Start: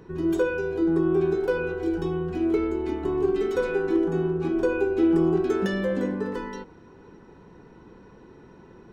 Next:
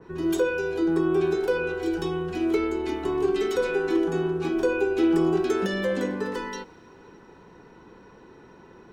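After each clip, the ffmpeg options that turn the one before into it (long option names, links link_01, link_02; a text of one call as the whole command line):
ffmpeg -i in.wav -filter_complex "[0:a]lowshelf=frequency=360:gain=-8,acrossover=split=480|710[link_01][link_02][link_03];[link_03]alimiter=level_in=7.5dB:limit=-24dB:level=0:latency=1:release=124,volume=-7.5dB[link_04];[link_01][link_02][link_04]amix=inputs=3:normalize=0,adynamicequalizer=threshold=0.00398:dfrequency=2300:dqfactor=0.7:tfrequency=2300:tqfactor=0.7:attack=5:release=100:ratio=0.375:range=3:mode=boostabove:tftype=highshelf,volume=3.5dB" out.wav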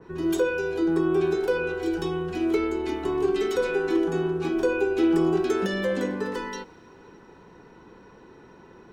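ffmpeg -i in.wav -af anull out.wav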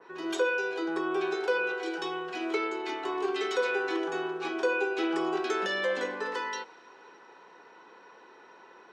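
ffmpeg -i in.wav -af "highpass=640,lowpass=5700,volume=2dB" out.wav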